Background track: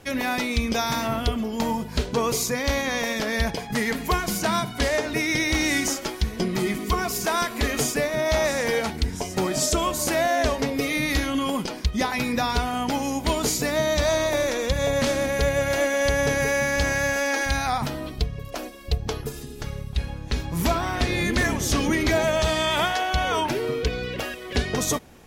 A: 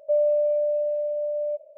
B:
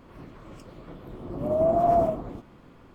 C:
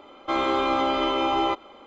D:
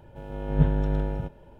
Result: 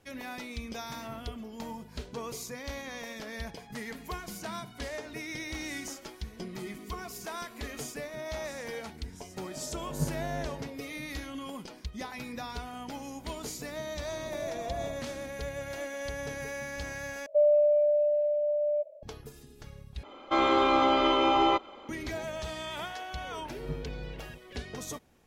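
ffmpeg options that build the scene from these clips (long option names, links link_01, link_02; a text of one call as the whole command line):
ffmpeg -i bed.wav -i cue0.wav -i cue1.wav -i cue2.wav -i cue3.wav -filter_complex "[4:a]asplit=2[link_01][link_02];[0:a]volume=-15dB[link_03];[link_01]highpass=85[link_04];[link_03]asplit=3[link_05][link_06][link_07];[link_05]atrim=end=17.264[link_08];[1:a]atrim=end=1.77,asetpts=PTS-STARTPTS,volume=-1dB[link_09];[link_06]atrim=start=19.026:end=20.034[link_10];[3:a]atrim=end=1.86,asetpts=PTS-STARTPTS,volume=-0.5dB[link_11];[link_07]atrim=start=21.886[link_12];[link_04]atrim=end=1.59,asetpts=PTS-STARTPTS,volume=-9dB,afade=type=in:duration=0.004:curve=hsin,afade=type=out:start_time=1.586:duration=0.004:curve=hsin,adelay=9410[link_13];[2:a]atrim=end=2.94,asetpts=PTS-STARTPTS,volume=-16dB,afade=type=in:duration=0.004:curve=hsin,afade=type=out:start_time=2.936:duration=0.004:curve=hsin,adelay=12820[link_14];[link_02]atrim=end=1.59,asetpts=PTS-STARTPTS,volume=-16.5dB,afade=type=in:duration=0.004:curve=hsin,afade=type=out:start_time=1.586:duration=0.004:curve=hsin,adelay=23100[link_15];[link_08][link_09]acrossfade=duration=0.004:curve1=hsin:curve2=hsin[link_16];[link_16][link_10]acrossfade=duration=0.004:curve1=hsin:curve2=hsin[link_17];[link_17][link_11]acrossfade=duration=0.004:curve1=hsin:curve2=hsin[link_18];[link_18][link_12]acrossfade=duration=0.004:curve1=hsin:curve2=hsin[link_19];[link_19][link_13][link_14][link_15]amix=inputs=4:normalize=0" out.wav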